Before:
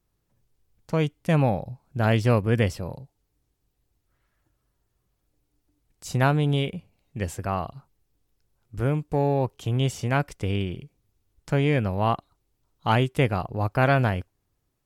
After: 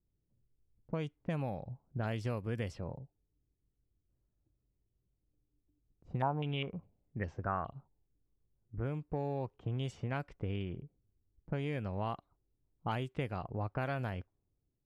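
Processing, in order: level-controlled noise filter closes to 380 Hz, open at -16.5 dBFS; compression 4:1, threshold -28 dBFS, peak gain reduction 11.5 dB; 6.22–8.80 s: step-sequenced low-pass 4.9 Hz 900–5800 Hz; trim -6 dB

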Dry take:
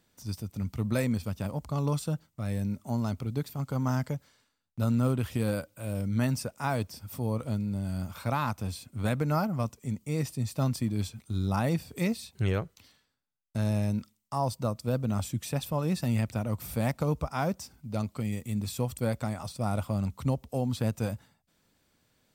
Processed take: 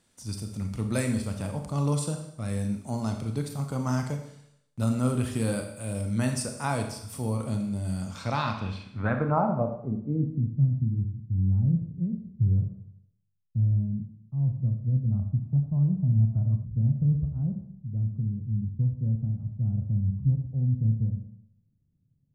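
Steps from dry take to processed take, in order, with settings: low-pass sweep 9.6 kHz -> 140 Hz, 7.93–10.57 s; Schroeder reverb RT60 0.73 s, combs from 28 ms, DRR 4.5 dB; time-frequency box 15.11–16.64 s, 600–1500 Hz +12 dB

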